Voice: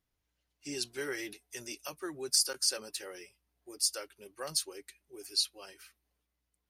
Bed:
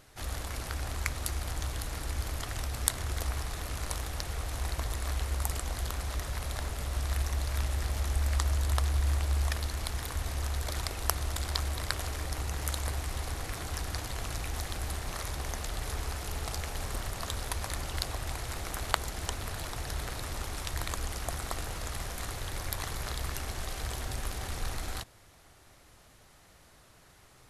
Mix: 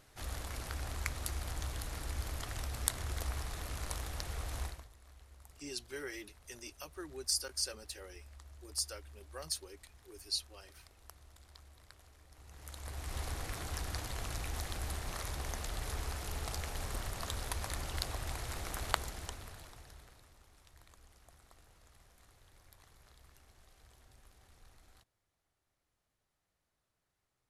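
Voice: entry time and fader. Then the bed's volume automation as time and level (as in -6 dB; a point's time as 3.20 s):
4.95 s, -6.0 dB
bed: 4.63 s -5 dB
4.91 s -26 dB
12.28 s -26 dB
13.18 s -4 dB
18.96 s -4 dB
20.37 s -26.5 dB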